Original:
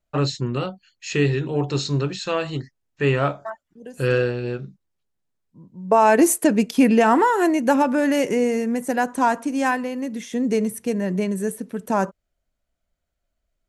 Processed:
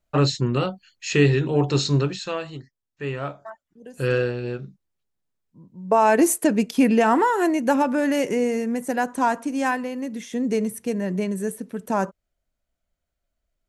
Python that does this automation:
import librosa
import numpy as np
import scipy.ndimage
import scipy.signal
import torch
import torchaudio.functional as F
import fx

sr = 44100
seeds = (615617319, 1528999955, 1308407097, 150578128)

y = fx.gain(x, sr, db=fx.line((1.96, 2.5), (2.6, -9.5), (3.14, -9.5), (4.03, -2.0)))